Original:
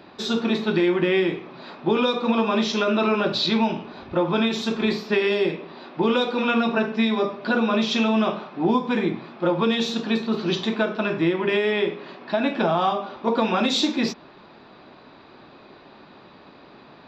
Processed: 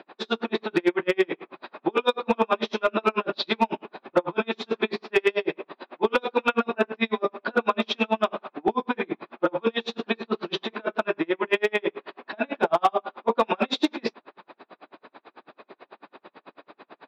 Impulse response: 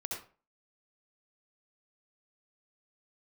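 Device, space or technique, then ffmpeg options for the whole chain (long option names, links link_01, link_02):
helicopter radio: -af "highpass=360,lowpass=2900,aeval=exprs='val(0)*pow(10,-40*(0.5-0.5*cos(2*PI*9.1*n/s))/20)':channel_layout=same,asoftclip=type=hard:threshold=-18dB,volume=7dB"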